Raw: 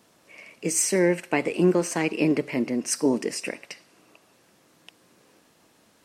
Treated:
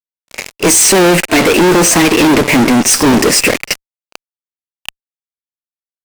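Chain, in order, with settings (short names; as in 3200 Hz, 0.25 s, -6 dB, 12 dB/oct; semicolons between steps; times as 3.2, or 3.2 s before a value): fuzz box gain 42 dB, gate -41 dBFS; pre-echo 31 ms -20 dB; gain +6.5 dB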